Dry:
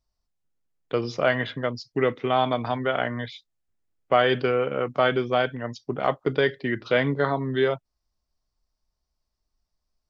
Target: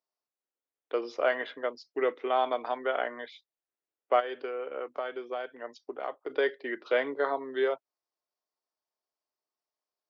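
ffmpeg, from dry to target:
ffmpeg -i in.wav -filter_complex "[0:a]asplit=3[link_01][link_02][link_03];[link_01]afade=type=out:start_time=4.19:duration=0.02[link_04];[link_02]acompressor=threshold=-28dB:ratio=4,afade=type=in:start_time=4.19:duration=0.02,afade=type=out:start_time=6.29:duration=0.02[link_05];[link_03]afade=type=in:start_time=6.29:duration=0.02[link_06];[link_04][link_05][link_06]amix=inputs=3:normalize=0,highpass=frequency=350:width=0.5412,highpass=frequency=350:width=1.3066,highshelf=frequency=3000:gain=-9.5,volume=-3.5dB" out.wav

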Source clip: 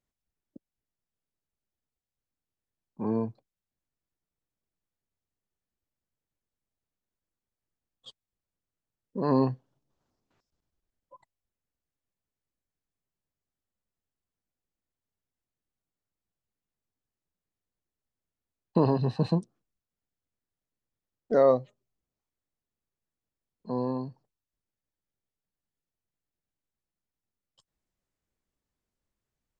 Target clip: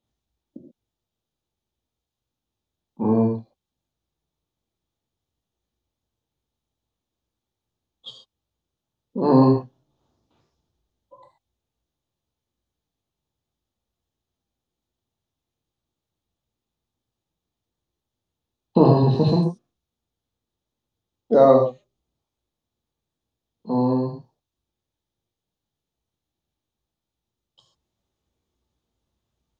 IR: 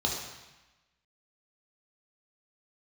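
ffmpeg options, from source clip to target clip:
-filter_complex "[1:a]atrim=start_sample=2205,atrim=end_sample=6174,asetrate=41895,aresample=44100[link_01];[0:a][link_01]afir=irnorm=-1:irlink=0,volume=-1.5dB"

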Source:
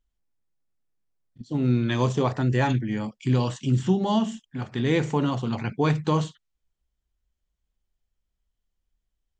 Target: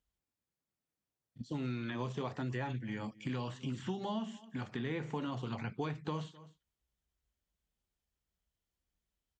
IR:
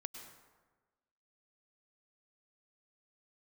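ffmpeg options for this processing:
-filter_complex "[0:a]highpass=68,asplit=2[link_01][link_02];[link_02]adelay=256.6,volume=-28dB,highshelf=frequency=4000:gain=-5.77[link_03];[link_01][link_03]amix=inputs=2:normalize=0,acrossover=split=3900[link_04][link_05];[link_05]acompressor=threshold=-54dB:ratio=4:attack=1:release=60[link_06];[link_04][link_06]amix=inputs=2:normalize=0,flanger=delay=1.3:depth=4:regen=-74:speed=0.71:shape=triangular,acrossover=split=960|2000[link_07][link_08][link_09];[link_07]acompressor=threshold=-40dB:ratio=4[link_10];[link_08]acompressor=threshold=-51dB:ratio=4[link_11];[link_09]acompressor=threshold=-55dB:ratio=4[link_12];[link_10][link_11][link_12]amix=inputs=3:normalize=0,volume=2dB"

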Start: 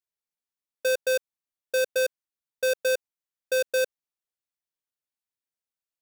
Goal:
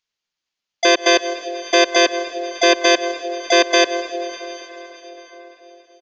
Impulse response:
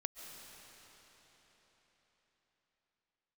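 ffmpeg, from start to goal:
-filter_complex "[0:a]crystalizer=i=4.5:c=0,aresample=11025,aresample=44100,asplit=2[link_01][link_02];[1:a]atrim=start_sample=2205[link_03];[link_02][link_03]afir=irnorm=-1:irlink=0,volume=1.5dB[link_04];[link_01][link_04]amix=inputs=2:normalize=0,asplit=4[link_05][link_06][link_07][link_08];[link_06]asetrate=29433,aresample=44100,atempo=1.49831,volume=-3dB[link_09];[link_07]asetrate=33038,aresample=44100,atempo=1.33484,volume=-8dB[link_10];[link_08]asetrate=58866,aresample=44100,atempo=0.749154,volume=0dB[link_11];[link_05][link_09][link_10][link_11]amix=inputs=4:normalize=0,volume=-1dB"

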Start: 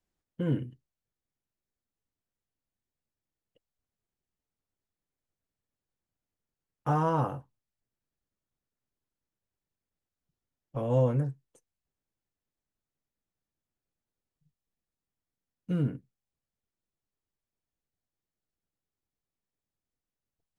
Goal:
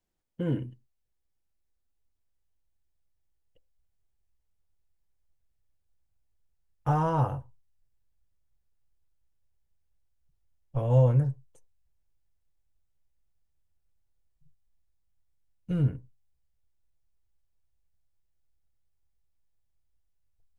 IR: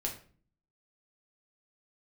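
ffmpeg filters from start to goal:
-filter_complex "[0:a]asplit=2[link_01][link_02];[link_02]lowpass=frequency=970:width_type=q:width=4.9[link_03];[1:a]atrim=start_sample=2205,afade=type=out:start_time=0.16:duration=0.01,atrim=end_sample=7497[link_04];[link_03][link_04]afir=irnorm=-1:irlink=0,volume=-20dB[link_05];[link_01][link_05]amix=inputs=2:normalize=0,asubboost=boost=9.5:cutoff=74"

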